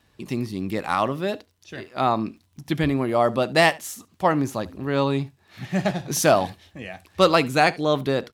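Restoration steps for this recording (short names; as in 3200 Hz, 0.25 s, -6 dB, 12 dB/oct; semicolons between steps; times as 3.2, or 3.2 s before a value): de-click; inverse comb 72 ms -22.5 dB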